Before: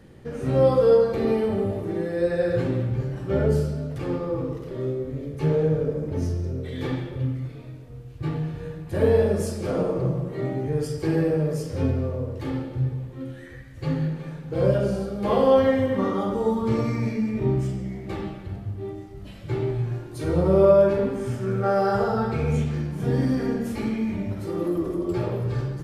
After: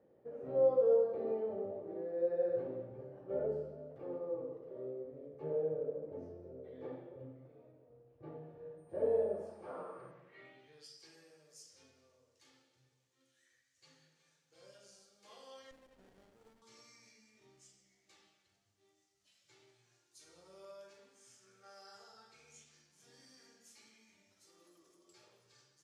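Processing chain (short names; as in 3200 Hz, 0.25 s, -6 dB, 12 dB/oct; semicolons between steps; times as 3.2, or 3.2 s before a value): band-pass sweep 560 Hz -> 6400 Hz, 9.29–11.17; 8.77–10.1 whine 8900 Hz -70 dBFS; 15.71–16.62 running maximum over 33 samples; gain -9 dB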